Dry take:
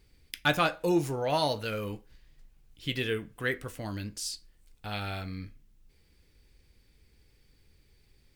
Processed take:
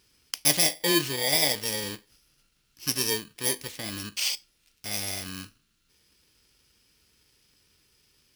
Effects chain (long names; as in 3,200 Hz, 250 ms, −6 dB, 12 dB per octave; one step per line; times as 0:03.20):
samples in bit-reversed order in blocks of 32 samples
dynamic equaliser 1,500 Hz, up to −4 dB, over −45 dBFS, Q 0.89
in parallel at −12 dB: bit-depth reduction 6 bits, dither none
on the sum: meter weighting curve D